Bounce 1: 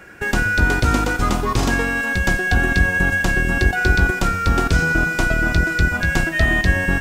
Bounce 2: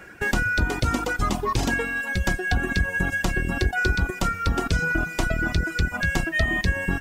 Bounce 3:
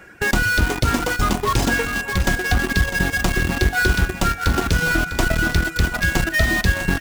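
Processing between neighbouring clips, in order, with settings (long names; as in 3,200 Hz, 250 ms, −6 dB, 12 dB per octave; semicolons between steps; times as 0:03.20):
reverb reduction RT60 1.8 s; downward compressor 3 to 1, threshold −17 dBFS, peak gain reduction 5.5 dB; level −1.5 dB
in parallel at −4 dB: bit reduction 4 bits; on the sum: repeating echo 651 ms, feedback 39%, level −11.5 dB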